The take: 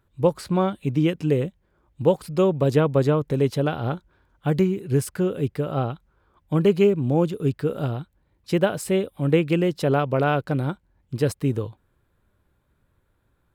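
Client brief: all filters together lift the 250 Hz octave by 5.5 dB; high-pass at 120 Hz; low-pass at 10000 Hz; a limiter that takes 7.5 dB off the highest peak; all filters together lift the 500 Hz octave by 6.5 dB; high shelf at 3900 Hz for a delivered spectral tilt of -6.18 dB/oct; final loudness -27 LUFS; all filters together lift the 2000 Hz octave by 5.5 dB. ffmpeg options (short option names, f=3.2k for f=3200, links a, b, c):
-af "highpass=120,lowpass=10k,equalizer=f=250:t=o:g=6.5,equalizer=f=500:t=o:g=5.5,equalizer=f=2k:t=o:g=5,highshelf=f=3.9k:g=9,volume=-7dB,alimiter=limit=-14dB:level=0:latency=1"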